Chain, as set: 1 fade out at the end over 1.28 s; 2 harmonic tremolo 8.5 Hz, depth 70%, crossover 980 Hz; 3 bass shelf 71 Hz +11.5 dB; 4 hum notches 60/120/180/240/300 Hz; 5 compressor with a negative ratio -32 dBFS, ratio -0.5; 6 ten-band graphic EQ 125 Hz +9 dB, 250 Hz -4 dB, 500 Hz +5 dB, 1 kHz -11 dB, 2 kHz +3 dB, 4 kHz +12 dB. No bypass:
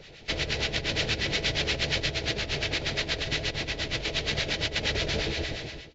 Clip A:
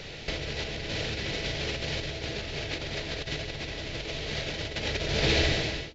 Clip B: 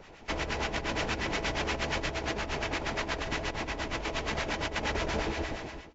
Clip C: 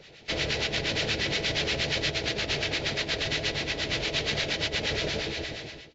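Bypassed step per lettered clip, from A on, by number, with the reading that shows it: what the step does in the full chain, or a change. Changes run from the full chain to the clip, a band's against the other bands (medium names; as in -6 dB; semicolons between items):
2, momentary loudness spread change +6 LU; 6, crest factor change -2.0 dB; 3, 125 Hz band -2.0 dB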